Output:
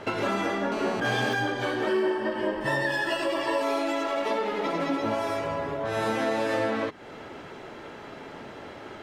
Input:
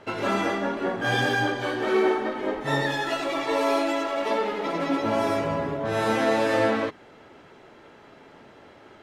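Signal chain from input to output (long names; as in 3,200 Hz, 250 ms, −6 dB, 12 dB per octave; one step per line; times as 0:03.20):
0:01.87–0:03.62: EQ curve with evenly spaced ripples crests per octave 1.3, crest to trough 12 dB
downward compressor 3 to 1, threshold −36 dBFS, peak gain reduction 15 dB
0:00.72–0:01.33: phone interference −42 dBFS
0:05.15–0:05.97: parametric band 200 Hz −7.5 dB 1.6 octaves
level +8 dB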